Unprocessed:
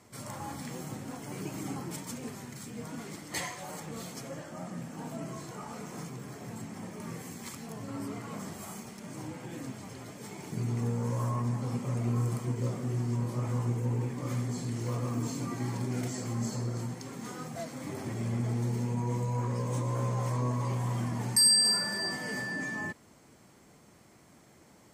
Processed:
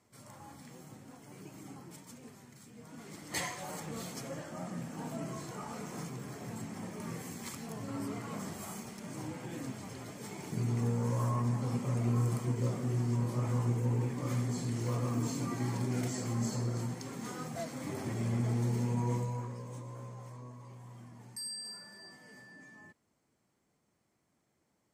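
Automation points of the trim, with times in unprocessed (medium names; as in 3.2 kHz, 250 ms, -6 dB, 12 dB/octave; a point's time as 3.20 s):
2.82 s -11.5 dB
3.38 s -0.5 dB
19.13 s -0.5 dB
19.56 s -11 dB
20.62 s -19 dB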